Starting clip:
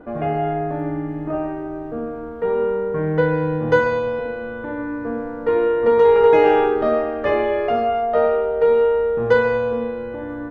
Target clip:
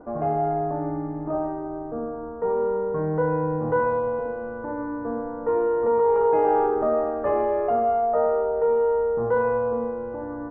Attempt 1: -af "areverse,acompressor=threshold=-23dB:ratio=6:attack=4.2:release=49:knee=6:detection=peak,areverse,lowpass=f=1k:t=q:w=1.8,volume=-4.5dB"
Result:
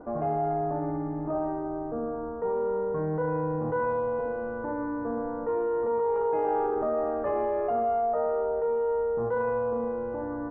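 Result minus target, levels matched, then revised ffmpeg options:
compressor: peak gain reduction +7 dB
-af "areverse,acompressor=threshold=-14.5dB:ratio=6:attack=4.2:release=49:knee=6:detection=peak,areverse,lowpass=f=1k:t=q:w=1.8,volume=-4.5dB"

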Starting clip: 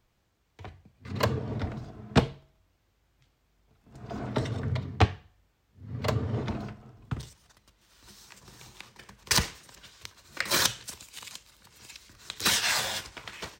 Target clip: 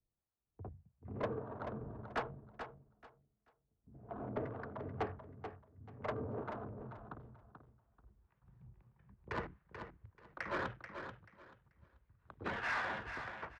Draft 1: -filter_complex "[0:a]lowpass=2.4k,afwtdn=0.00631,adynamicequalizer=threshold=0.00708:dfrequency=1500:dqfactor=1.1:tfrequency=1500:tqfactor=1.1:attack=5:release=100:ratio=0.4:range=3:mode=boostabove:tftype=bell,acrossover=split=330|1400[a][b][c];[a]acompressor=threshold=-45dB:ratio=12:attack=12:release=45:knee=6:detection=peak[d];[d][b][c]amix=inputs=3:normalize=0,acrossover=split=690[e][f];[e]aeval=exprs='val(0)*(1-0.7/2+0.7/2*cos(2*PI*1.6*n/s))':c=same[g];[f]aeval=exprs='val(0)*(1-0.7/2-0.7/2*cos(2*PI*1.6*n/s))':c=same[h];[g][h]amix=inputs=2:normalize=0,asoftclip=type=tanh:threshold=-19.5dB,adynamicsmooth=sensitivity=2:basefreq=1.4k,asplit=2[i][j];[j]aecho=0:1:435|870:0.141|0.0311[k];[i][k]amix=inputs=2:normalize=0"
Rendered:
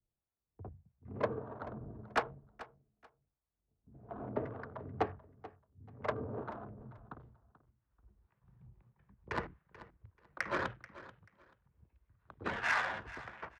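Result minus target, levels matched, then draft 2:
soft clip: distortion -9 dB; echo-to-direct -8.5 dB
-filter_complex "[0:a]lowpass=2.4k,afwtdn=0.00631,adynamicequalizer=threshold=0.00708:dfrequency=1500:dqfactor=1.1:tfrequency=1500:tqfactor=1.1:attack=5:release=100:ratio=0.4:range=3:mode=boostabove:tftype=bell,acrossover=split=330|1400[a][b][c];[a]acompressor=threshold=-45dB:ratio=12:attack=12:release=45:knee=6:detection=peak[d];[d][b][c]amix=inputs=3:normalize=0,acrossover=split=690[e][f];[e]aeval=exprs='val(0)*(1-0.7/2+0.7/2*cos(2*PI*1.6*n/s))':c=same[g];[f]aeval=exprs='val(0)*(1-0.7/2-0.7/2*cos(2*PI*1.6*n/s))':c=same[h];[g][h]amix=inputs=2:normalize=0,asoftclip=type=tanh:threshold=-29.5dB,adynamicsmooth=sensitivity=2:basefreq=1.4k,asplit=2[i][j];[j]aecho=0:1:435|870|1305:0.376|0.0827|0.0182[k];[i][k]amix=inputs=2:normalize=0"

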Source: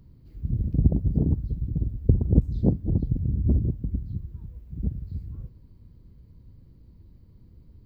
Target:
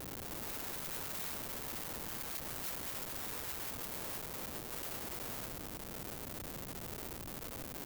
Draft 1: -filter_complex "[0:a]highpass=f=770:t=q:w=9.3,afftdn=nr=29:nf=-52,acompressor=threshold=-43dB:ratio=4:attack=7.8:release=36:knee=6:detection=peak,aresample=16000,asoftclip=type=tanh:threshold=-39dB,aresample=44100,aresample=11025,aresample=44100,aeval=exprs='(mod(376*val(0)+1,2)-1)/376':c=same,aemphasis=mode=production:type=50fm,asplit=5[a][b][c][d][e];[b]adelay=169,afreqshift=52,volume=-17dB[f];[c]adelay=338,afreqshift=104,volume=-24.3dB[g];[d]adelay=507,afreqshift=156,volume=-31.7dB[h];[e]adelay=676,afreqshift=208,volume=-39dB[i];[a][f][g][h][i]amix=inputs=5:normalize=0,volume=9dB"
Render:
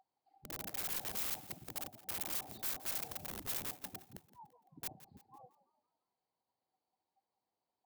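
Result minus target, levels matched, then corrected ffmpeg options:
1000 Hz band -5.0 dB
-filter_complex "[0:a]afftdn=nr=29:nf=-52,acompressor=threshold=-43dB:ratio=4:attack=7.8:release=36:knee=6:detection=peak,aresample=16000,asoftclip=type=tanh:threshold=-39dB,aresample=44100,aresample=11025,aresample=44100,aeval=exprs='(mod(376*val(0)+1,2)-1)/376':c=same,aemphasis=mode=production:type=50fm,asplit=5[a][b][c][d][e];[b]adelay=169,afreqshift=52,volume=-17dB[f];[c]adelay=338,afreqshift=104,volume=-24.3dB[g];[d]adelay=507,afreqshift=156,volume=-31.7dB[h];[e]adelay=676,afreqshift=208,volume=-39dB[i];[a][f][g][h][i]amix=inputs=5:normalize=0,volume=9dB"

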